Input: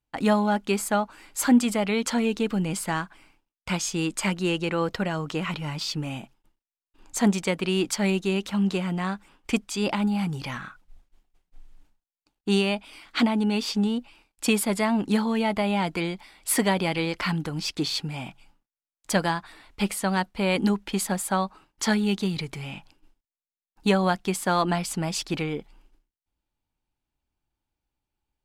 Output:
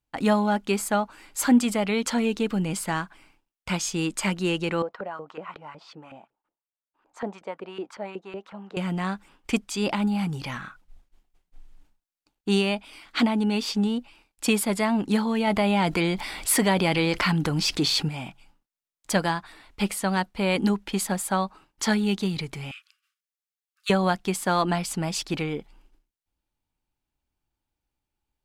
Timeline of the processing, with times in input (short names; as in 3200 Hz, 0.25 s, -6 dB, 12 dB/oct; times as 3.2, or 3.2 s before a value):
4.82–8.77 LFO band-pass saw up 5.4 Hz 460–1500 Hz
15.47–18.09 fast leveller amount 50%
22.71–23.9 brick-wall FIR high-pass 1100 Hz